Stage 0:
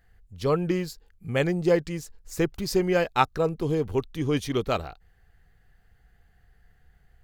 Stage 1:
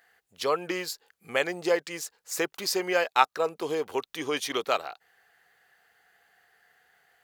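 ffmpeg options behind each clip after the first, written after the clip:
ffmpeg -i in.wav -filter_complex "[0:a]highpass=630,asplit=2[link_01][link_02];[link_02]acompressor=threshold=-36dB:ratio=6,volume=2.5dB[link_03];[link_01][link_03]amix=inputs=2:normalize=0" out.wav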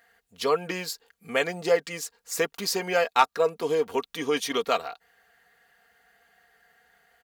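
ffmpeg -i in.wav -af "lowshelf=frequency=190:gain=9.5,aecho=1:1:4.3:0.6,asoftclip=type=hard:threshold=-8dB" out.wav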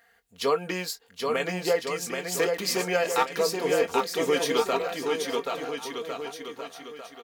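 ffmpeg -i in.wav -filter_complex "[0:a]alimiter=limit=-14.5dB:level=0:latency=1:release=99,asplit=2[link_01][link_02];[link_02]adelay=22,volume=-12dB[link_03];[link_01][link_03]amix=inputs=2:normalize=0,asplit=2[link_04][link_05];[link_05]aecho=0:1:780|1404|1903|2303|2622:0.631|0.398|0.251|0.158|0.1[link_06];[link_04][link_06]amix=inputs=2:normalize=0" out.wav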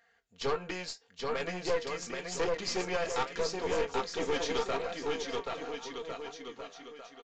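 ffmpeg -i in.wav -af "flanger=delay=5.5:depth=5.2:regen=81:speed=0.81:shape=triangular,aeval=exprs='(tanh(22.4*val(0)+0.7)-tanh(0.7))/22.4':channel_layout=same,aresample=16000,aresample=44100,volume=2dB" out.wav

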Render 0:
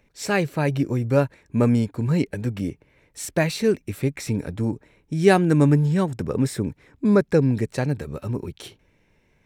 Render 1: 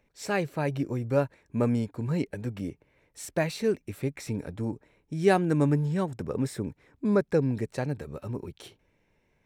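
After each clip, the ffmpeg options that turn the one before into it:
ffmpeg -i in.wav -af "equalizer=frequency=710:width=0.67:gain=3.5,volume=-8dB" out.wav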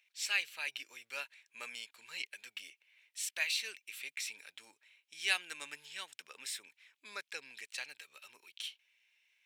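ffmpeg -i in.wav -af "highpass=frequency=2800:width_type=q:width=2.5,volume=1dB" out.wav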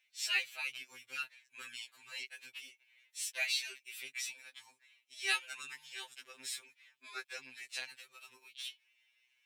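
ffmpeg -i in.wav -af "afftfilt=real='re*2.45*eq(mod(b,6),0)':imag='im*2.45*eq(mod(b,6),0)':win_size=2048:overlap=0.75,volume=2dB" out.wav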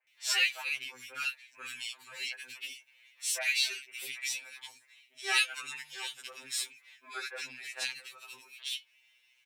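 ffmpeg -i in.wav -filter_complex "[0:a]acrossover=split=300|1700[link_01][link_02][link_03];[link_01]adelay=40[link_04];[link_03]adelay=70[link_05];[link_04][link_02][link_05]amix=inputs=3:normalize=0,adynamicequalizer=threshold=0.00282:dfrequency=3000:dqfactor=0.7:tfrequency=3000:tqfactor=0.7:attack=5:release=100:ratio=0.375:range=3:mode=cutabove:tftype=highshelf,volume=8dB" out.wav

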